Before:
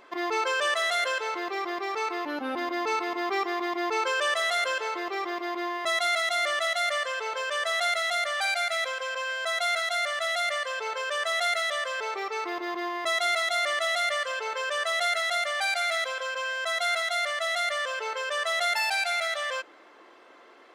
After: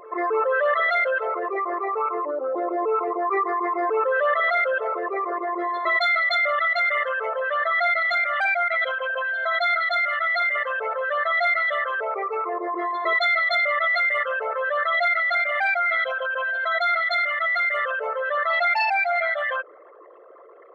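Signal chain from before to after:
spectral envelope exaggerated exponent 3
echo ahead of the sound 273 ms −21.5 dB
level +5.5 dB

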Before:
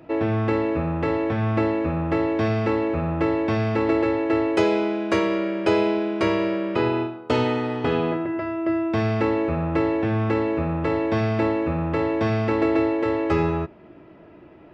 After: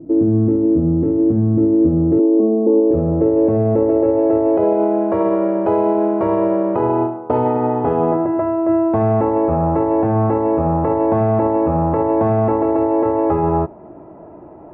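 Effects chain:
0:02.19–0:02.91: Chebyshev band-pass filter 210–1,100 Hz, order 5
brickwall limiter −17 dBFS, peak gain reduction 10 dB
low-pass filter sweep 310 Hz → 840 Hz, 0:01.53–0:05.37
level +6.5 dB

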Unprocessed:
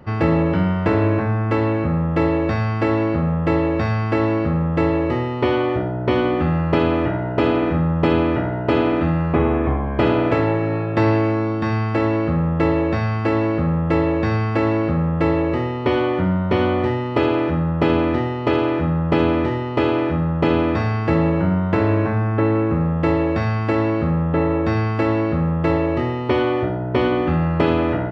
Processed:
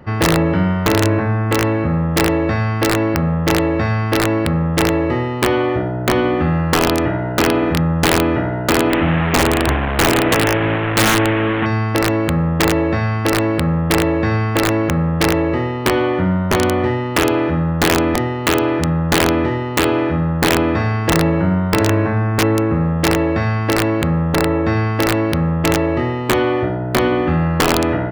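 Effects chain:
0:08.90–0:11.66: linear delta modulator 16 kbit/s, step −16 dBFS
parametric band 1,800 Hz +3.5 dB 0.42 octaves
wrap-around overflow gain 8.5 dB
level +2.5 dB

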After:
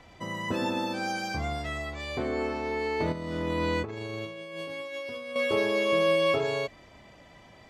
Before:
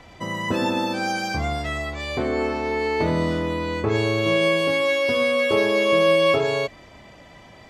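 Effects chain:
0:03.12–0:05.36: compressor whose output falls as the input rises −26 dBFS, ratio −0.5
level −6.5 dB

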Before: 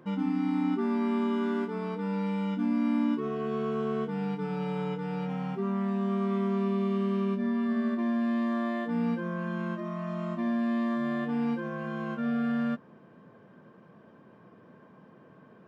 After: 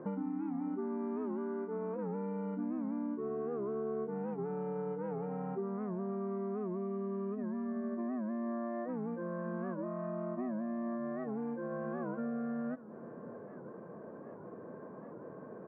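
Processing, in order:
low-pass filter 1,700 Hz 24 dB per octave
parametric band 480 Hz +10.5 dB 1.8 octaves
downward compressor, threshold −36 dBFS, peak gain reduction 16.5 dB
on a send: single-tap delay 603 ms −17.5 dB
on the sum: wow of a warped record 78 rpm, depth 160 cents

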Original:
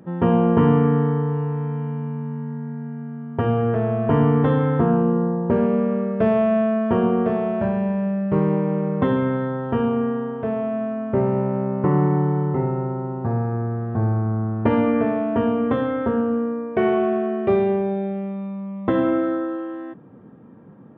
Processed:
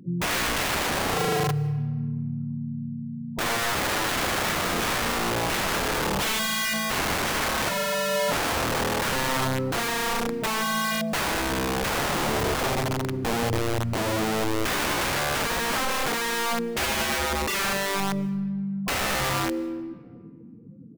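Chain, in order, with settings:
gate on every frequency bin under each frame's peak −10 dB strong
wrap-around overflow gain 21.5 dB
pitch-shifted copies added −5 semitones −10 dB
on a send: convolution reverb RT60 1.9 s, pre-delay 140 ms, DRR 19 dB

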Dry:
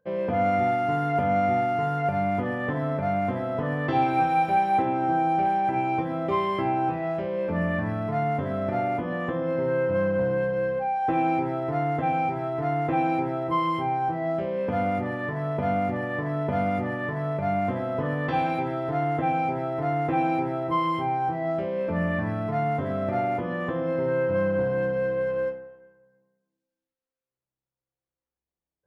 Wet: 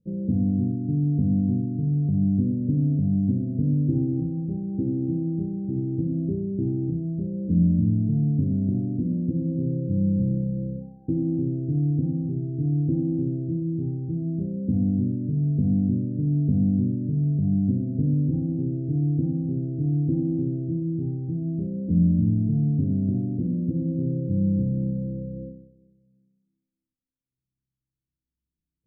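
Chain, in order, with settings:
inverse Chebyshev low-pass filter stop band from 920 Hz, stop band 60 dB
level +9 dB

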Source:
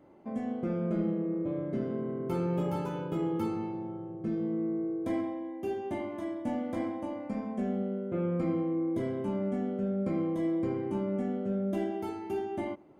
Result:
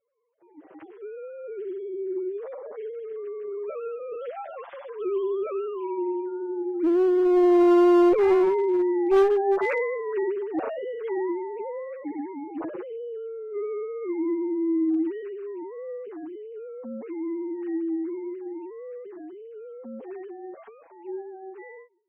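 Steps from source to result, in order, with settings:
three sine waves on the formant tracks
source passing by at 0:05.16, 20 m/s, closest 14 metres
automatic gain control gain up to 15 dB
phase-vocoder stretch with locked phases 1.7×
asymmetric clip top −19 dBFS, bottom −12 dBFS

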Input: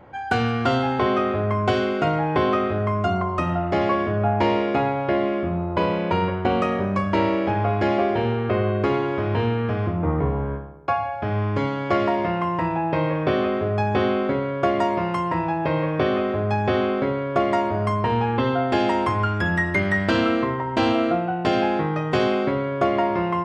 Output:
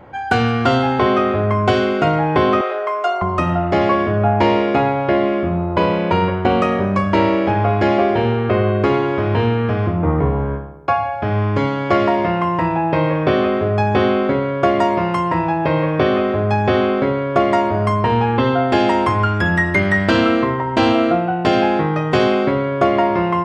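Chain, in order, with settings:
0:02.61–0:03.22: Butterworth high-pass 420 Hz 36 dB per octave
level +5.5 dB

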